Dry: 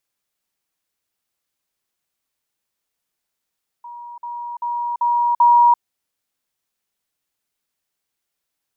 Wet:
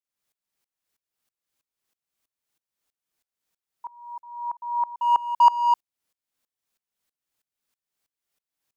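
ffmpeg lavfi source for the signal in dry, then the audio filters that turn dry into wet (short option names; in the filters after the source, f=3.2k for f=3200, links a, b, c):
-f lavfi -i "aevalsrc='pow(10,(-32.5+6*floor(t/0.39))/20)*sin(2*PI*955*t)*clip(min(mod(t,0.39),0.34-mod(t,0.39))/0.005,0,1)':d=1.95:s=44100"
-filter_complex "[0:a]asplit=2[a][b];[b]asoftclip=type=hard:threshold=-19.5dB,volume=-5.5dB[c];[a][c]amix=inputs=2:normalize=0,aeval=exprs='val(0)*pow(10,-23*if(lt(mod(-3.1*n/s,1),2*abs(-3.1)/1000),1-mod(-3.1*n/s,1)/(2*abs(-3.1)/1000),(mod(-3.1*n/s,1)-2*abs(-3.1)/1000)/(1-2*abs(-3.1)/1000))/20)':c=same"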